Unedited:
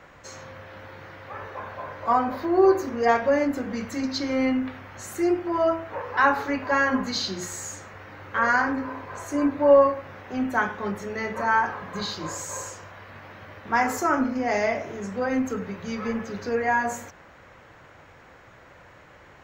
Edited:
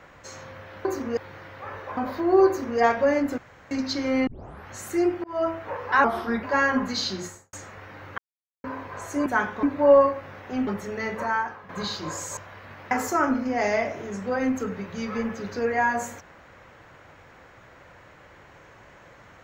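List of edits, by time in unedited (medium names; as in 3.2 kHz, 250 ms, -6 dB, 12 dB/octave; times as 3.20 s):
1.65–2.22 s: delete
2.72–3.04 s: copy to 0.85 s
3.63–3.96 s: room tone
4.52 s: tape start 0.42 s
5.49–5.75 s: fade in
6.29–6.61 s: speed 82%
7.34–7.71 s: studio fade out
8.36–8.82 s: mute
10.48–10.85 s: move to 9.44 s
11.37–11.87 s: fade out quadratic, to -10 dB
12.55–12.82 s: delete
13.36–13.81 s: delete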